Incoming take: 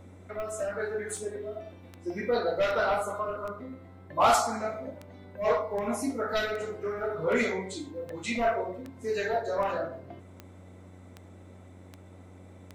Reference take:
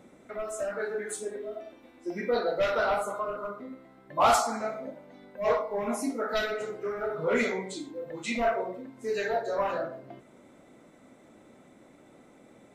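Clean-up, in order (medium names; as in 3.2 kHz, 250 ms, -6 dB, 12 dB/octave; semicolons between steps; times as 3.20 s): de-click; de-hum 92 Hz, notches 12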